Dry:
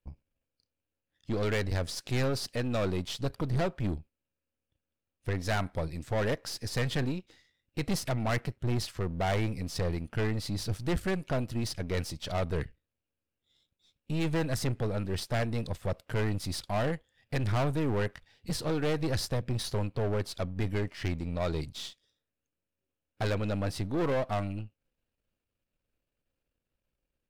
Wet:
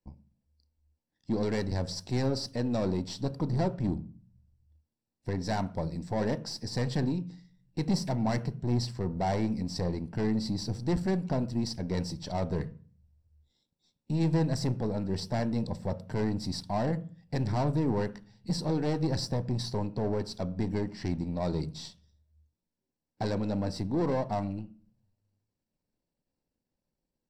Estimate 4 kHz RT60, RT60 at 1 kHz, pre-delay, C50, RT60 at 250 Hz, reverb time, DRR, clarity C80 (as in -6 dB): 0.40 s, 0.45 s, 3 ms, 18.0 dB, 0.70 s, 0.40 s, 11.0 dB, 22.0 dB